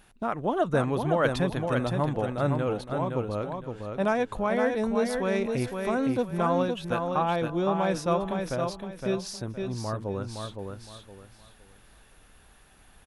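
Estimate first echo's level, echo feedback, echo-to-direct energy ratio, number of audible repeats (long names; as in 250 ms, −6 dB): −5.0 dB, 28%, −4.5 dB, 3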